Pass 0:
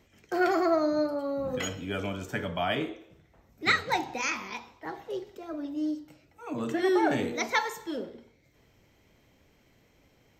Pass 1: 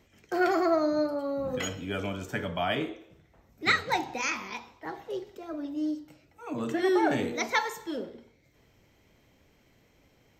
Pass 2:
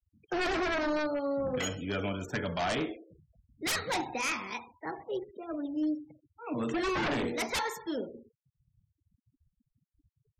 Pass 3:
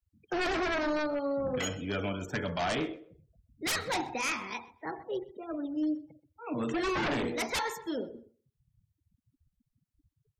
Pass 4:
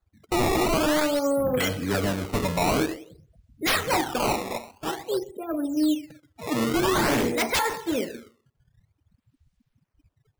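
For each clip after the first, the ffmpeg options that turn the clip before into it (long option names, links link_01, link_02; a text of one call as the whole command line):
ffmpeg -i in.wav -af anull out.wav
ffmpeg -i in.wav -af "acrusher=bits=11:mix=0:aa=0.000001,aeval=exprs='0.0562*(abs(mod(val(0)/0.0562+3,4)-2)-1)':channel_layout=same,afftfilt=real='re*gte(hypot(re,im),0.00501)':imag='im*gte(hypot(re,im),0.00501)':win_size=1024:overlap=0.75" out.wav
ffmpeg -i in.wav -filter_complex "[0:a]asplit=2[link_01][link_02];[link_02]adelay=127,lowpass=frequency=3700:poles=1,volume=-20dB,asplit=2[link_03][link_04];[link_04]adelay=127,lowpass=frequency=3700:poles=1,volume=0.21[link_05];[link_01][link_03][link_05]amix=inputs=3:normalize=0" out.wav
ffmpeg -i in.wav -af "acrusher=samples=16:mix=1:aa=0.000001:lfo=1:lforange=25.6:lforate=0.5,volume=8dB" out.wav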